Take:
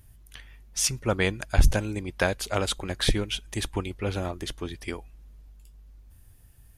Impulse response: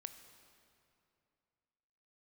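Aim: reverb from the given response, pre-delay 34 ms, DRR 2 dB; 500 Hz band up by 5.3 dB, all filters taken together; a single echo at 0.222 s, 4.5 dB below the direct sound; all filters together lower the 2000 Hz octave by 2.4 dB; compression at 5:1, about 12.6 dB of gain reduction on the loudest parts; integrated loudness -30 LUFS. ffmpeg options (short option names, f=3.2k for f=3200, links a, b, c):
-filter_complex "[0:a]equalizer=f=500:t=o:g=6.5,equalizer=f=2k:t=o:g=-3.5,acompressor=threshold=-27dB:ratio=5,aecho=1:1:222:0.596,asplit=2[a][b];[1:a]atrim=start_sample=2205,adelay=34[c];[b][c]afir=irnorm=-1:irlink=0,volume=2.5dB[d];[a][d]amix=inputs=2:normalize=0"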